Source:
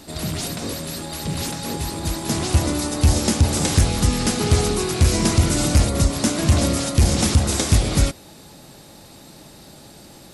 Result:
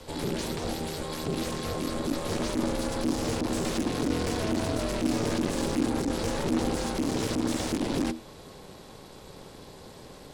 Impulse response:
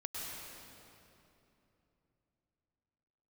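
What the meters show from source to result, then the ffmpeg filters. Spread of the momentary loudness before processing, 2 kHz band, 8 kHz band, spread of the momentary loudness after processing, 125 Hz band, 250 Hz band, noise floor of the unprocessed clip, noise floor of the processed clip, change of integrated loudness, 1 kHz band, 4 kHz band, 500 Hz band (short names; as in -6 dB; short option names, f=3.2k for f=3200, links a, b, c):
9 LU, -7.5 dB, -14.0 dB, 19 LU, -16.0 dB, -5.0 dB, -45 dBFS, -48 dBFS, -9.5 dB, -6.0 dB, -10.5 dB, -4.5 dB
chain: -filter_complex "[0:a]asplit=2[a][b];[b]alimiter=limit=-19.5dB:level=0:latency=1,volume=-2dB[c];[a][c]amix=inputs=2:normalize=0,aeval=exprs='(tanh(12.6*val(0)+0.6)-tanh(0.6))/12.6':c=same,aemphasis=mode=reproduction:type=cd,afreqshift=-44,aeval=exprs='val(0)*sin(2*PI*280*n/s)':c=same,volume=-1dB"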